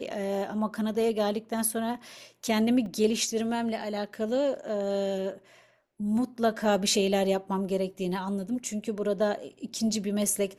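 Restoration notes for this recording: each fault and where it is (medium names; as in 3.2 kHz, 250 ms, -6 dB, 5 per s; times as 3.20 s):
2.86 s: dropout 2.1 ms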